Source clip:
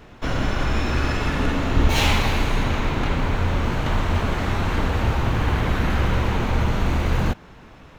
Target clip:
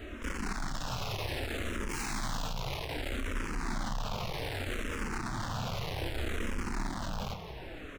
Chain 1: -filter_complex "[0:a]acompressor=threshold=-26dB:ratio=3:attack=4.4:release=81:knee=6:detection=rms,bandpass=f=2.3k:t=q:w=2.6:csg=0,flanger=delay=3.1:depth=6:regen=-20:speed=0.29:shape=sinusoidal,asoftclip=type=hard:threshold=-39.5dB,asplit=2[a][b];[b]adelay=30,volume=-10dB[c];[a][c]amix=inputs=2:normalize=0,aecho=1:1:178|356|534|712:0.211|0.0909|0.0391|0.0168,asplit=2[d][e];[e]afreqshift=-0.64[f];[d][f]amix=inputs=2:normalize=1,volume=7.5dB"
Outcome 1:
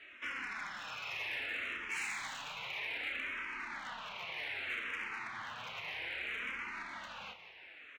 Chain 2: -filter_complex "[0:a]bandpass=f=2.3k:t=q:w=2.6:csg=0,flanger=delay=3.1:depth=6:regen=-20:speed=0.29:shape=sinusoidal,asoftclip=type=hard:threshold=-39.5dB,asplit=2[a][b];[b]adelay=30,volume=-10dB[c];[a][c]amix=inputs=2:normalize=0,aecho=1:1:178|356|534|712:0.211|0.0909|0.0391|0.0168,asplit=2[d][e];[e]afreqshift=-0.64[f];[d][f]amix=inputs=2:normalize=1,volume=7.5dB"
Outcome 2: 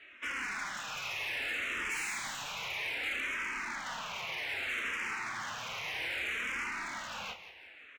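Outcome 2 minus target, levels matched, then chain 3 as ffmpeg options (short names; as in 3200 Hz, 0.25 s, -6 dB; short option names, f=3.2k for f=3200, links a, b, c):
2000 Hz band +5.5 dB
-filter_complex "[0:a]flanger=delay=3.1:depth=6:regen=-20:speed=0.29:shape=sinusoidal,asoftclip=type=hard:threshold=-39.5dB,asplit=2[a][b];[b]adelay=30,volume=-10dB[c];[a][c]amix=inputs=2:normalize=0,aecho=1:1:178|356|534|712:0.211|0.0909|0.0391|0.0168,asplit=2[d][e];[e]afreqshift=-0.64[f];[d][f]amix=inputs=2:normalize=1,volume=7.5dB"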